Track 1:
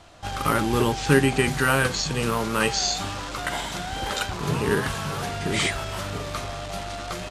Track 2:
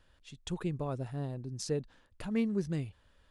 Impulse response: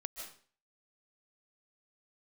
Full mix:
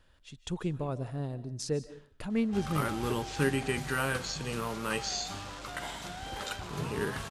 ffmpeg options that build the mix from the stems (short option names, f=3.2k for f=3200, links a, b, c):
-filter_complex "[0:a]adelay=2300,volume=-12dB,asplit=2[a][b];[b]volume=-9dB[c];[1:a]volume=-1dB,asplit=2[d][e];[e]volume=-6dB[f];[2:a]atrim=start_sample=2205[g];[c][f]amix=inputs=2:normalize=0[h];[h][g]afir=irnorm=-1:irlink=0[i];[a][d][i]amix=inputs=3:normalize=0"